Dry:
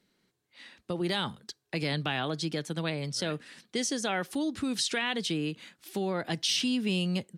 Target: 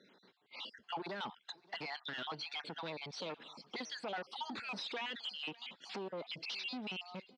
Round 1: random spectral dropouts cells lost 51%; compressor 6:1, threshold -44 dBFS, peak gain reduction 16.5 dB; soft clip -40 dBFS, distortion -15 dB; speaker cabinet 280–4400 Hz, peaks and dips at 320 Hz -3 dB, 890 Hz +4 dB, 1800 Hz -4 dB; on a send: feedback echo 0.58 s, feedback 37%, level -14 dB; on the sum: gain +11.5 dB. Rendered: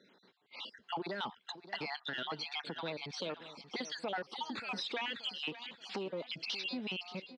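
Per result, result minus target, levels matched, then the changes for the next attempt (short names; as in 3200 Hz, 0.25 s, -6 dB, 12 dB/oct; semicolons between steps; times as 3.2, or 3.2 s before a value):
echo-to-direct +9 dB; soft clip: distortion -7 dB
change: feedback echo 0.58 s, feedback 37%, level -23 dB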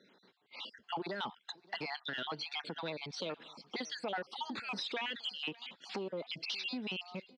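soft clip: distortion -7 dB
change: soft clip -47 dBFS, distortion -8 dB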